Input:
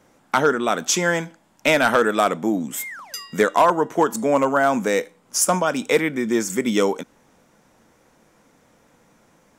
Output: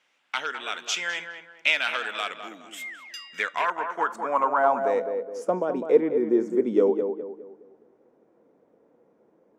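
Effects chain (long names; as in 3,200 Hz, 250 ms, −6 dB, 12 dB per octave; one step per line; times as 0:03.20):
tape delay 207 ms, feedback 40%, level −6 dB, low-pass 1,700 Hz
band-pass filter sweep 2,800 Hz → 410 Hz, 0:03.25–0:05.59
level +2 dB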